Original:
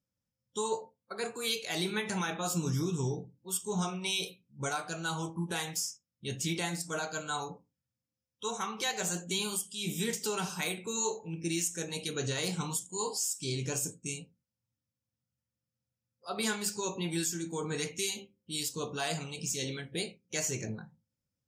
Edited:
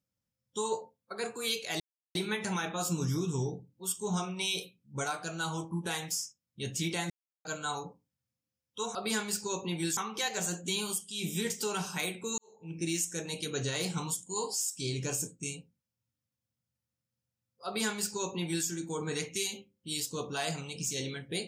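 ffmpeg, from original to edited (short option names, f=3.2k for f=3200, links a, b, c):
-filter_complex "[0:a]asplit=7[a][b][c][d][e][f][g];[a]atrim=end=1.8,asetpts=PTS-STARTPTS,afade=t=out:st=1.796:d=0.004:c=hsin,apad=pad_dur=0.35[h];[b]atrim=start=1.8:end=6.75,asetpts=PTS-STARTPTS,afade=t=in:d=0.004:c=hsin,afade=t=out:st=4.946:d=0.004:c=hsin[i];[c]atrim=start=6.75:end=7.1,asetpts=PTS-STARTPTS,volume=0[j];[d]atrim=start=7.1:end=8.602,asetpts=PTS-STARTPTS,afade=t=in:d=0.004:c=hsin[k];[e]atrim=start=16.278:end=17.302[l];[f]atrim=start=8.598:end=11.01,asetpts=PTS-STARTPTS,afade=t=out:st=2.408:d=0.004:c=hsin[m];[g]atrim=start=11.01,asetpts=PTS-STARTPTS,afade=t=in:d=0.38:c=qua[n];[h][i][j][k]concat=n=4:v=0:a=1[o];[o][l]acrossfade=d=0.004:c1=hsin:c2=hsin[p];[m][n]concat=n=2:v=0:a=1[q];[p][q]acrossfade=d=0.004:c1=hsin:c2=hsin"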